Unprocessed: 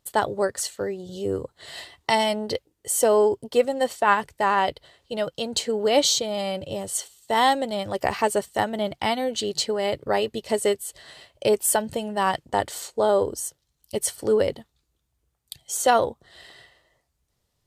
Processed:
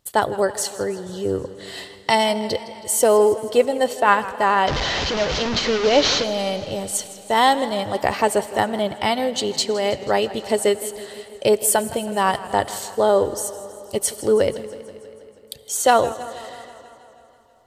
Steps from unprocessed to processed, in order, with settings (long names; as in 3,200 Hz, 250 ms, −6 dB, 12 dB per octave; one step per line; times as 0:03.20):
0:04.67–0:06.24: linear delta modulator 32 kbit/s, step −20.5 dBFS
comb and all-pass reverb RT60 3.5 s, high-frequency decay 0.8×, pre-delay 30 ms, DRR 17.5 dB
feedback echo with a swinging delay time 161 ms, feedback 67%, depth 87 cents, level −17 dB
level +3.5 dB